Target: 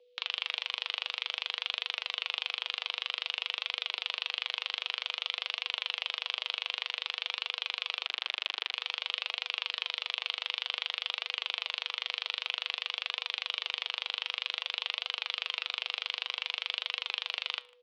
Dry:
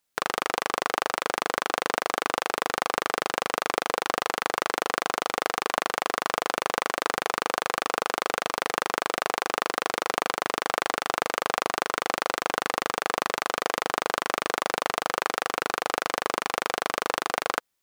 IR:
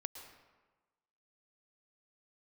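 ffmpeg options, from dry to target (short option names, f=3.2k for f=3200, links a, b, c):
-filter_complex "[0:a]aderivative,alimiter=limit=-15.5dB:level=0:latency=1,aeval=exprs='val(0)+0.000891*sin(2*PI*570*n/s)':c=same,flanger=delay=3.4:depth=6.2:regen=88:speed=0.53:shape=triangular,aexciter=amount=6.2:drive=7.7:freq=2.6k,asettb=1/sr,asplit=3[a][b][c];[a]atrim=end=8.064[d];[b]atrim=start=8.06:end=8.74,asetpts=PTS-STARTPTS,afade=t=in:d=0.004:c=qsin,afade=t=out:st=0.676:d=0.004:c=qsin,acrusher=bits=4:mix=0:aa=0.5[e];[c]atrim=start=8.736[f];[d][e]acrossfade=d=0.004:c1=hsin:c2=qsin[g];[g][f]acrossfade=d=0.004:c1=qsin:c2=hsin,highpass=f=520:t=q:w=0.5412,highpass=f=520:t=q:w=1.307,lowpass=f=3.4k:t=q:w=0.5176,lowpass=f=3.4k:t=q:w=0.7071,lowpass=f=3.4k:t=q:w=1.932,afreqshift=-78,asplit=2[h][i];[i]adelay=150,highpass=300,lowpass=3.4k,asoftclip=type=hard:threshold=-28dB,volume=-24dB[j];[h][j]amix=inputs=2:normalize=0,volume=6dB"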